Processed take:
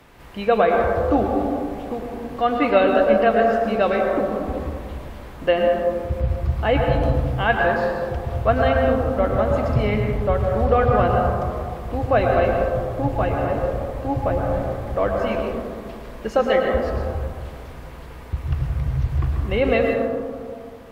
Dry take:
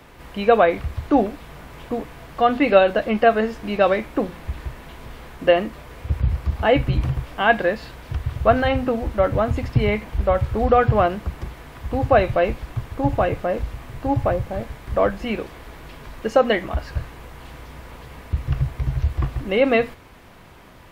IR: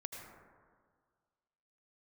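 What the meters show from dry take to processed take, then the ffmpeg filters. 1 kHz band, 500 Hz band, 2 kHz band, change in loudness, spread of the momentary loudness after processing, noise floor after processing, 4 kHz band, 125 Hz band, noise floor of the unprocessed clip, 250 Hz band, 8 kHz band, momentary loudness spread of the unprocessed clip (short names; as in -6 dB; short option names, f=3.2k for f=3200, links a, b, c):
+0.5 dB, +1.0 dB, -0.5 dB, 0.0 dB, 14 LU, -37 dBFS, -2.5 dB, +1.0 dB, -45 dBFS, 0.0 dB, n/a, 22 LU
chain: -filter_complex "[1:a]atrim=start_sample=2205,asetrate=33075,aresample=44100[a];[0:a][a]afir=irnorm=-1:irlink=0"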